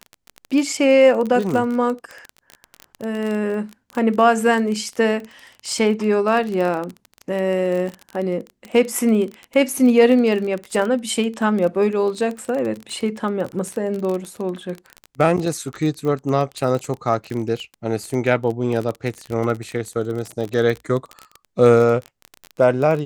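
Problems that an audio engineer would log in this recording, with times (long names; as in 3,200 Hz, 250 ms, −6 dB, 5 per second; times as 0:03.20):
surface crackle 23 per second −23 dBFS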